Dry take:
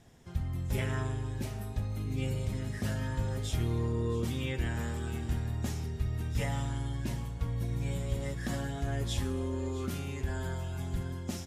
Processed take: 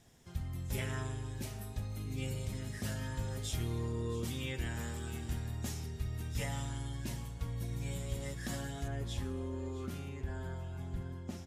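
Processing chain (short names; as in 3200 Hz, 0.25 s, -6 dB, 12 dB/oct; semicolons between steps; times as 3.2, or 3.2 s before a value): high shelf 3000 Hz +7.5 dB, from 8.88 s -3.5 dB, from 10.09 s -8 dB; gain -5.5 dB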